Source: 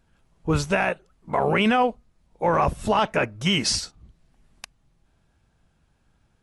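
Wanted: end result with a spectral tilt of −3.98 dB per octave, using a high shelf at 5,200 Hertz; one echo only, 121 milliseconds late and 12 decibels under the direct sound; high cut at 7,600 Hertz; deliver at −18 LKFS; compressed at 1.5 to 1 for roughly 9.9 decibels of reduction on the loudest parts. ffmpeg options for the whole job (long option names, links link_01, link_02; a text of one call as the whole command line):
ffmpeg -i in.wav -af "lowpass=7600,highshelf=frequency=5200:gain=5,acompressor=threshold=-45dB:ratio=1.5,aecho=1:1:121:0.251,volume=14.5dB" out.wav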